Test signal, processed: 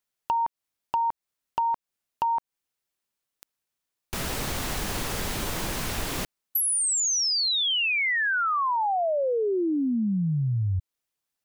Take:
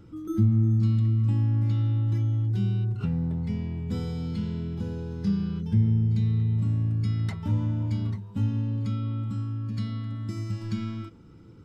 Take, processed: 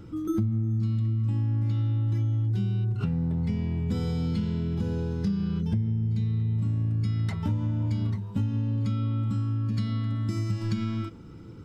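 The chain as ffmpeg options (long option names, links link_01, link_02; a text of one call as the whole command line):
ffmpeg -i in.wav -af "acompressor=threshold=-29dB:ratio=8,volume=23dB,asoftclip=hard,volume=-23dB,volume=5.5dB" out.wav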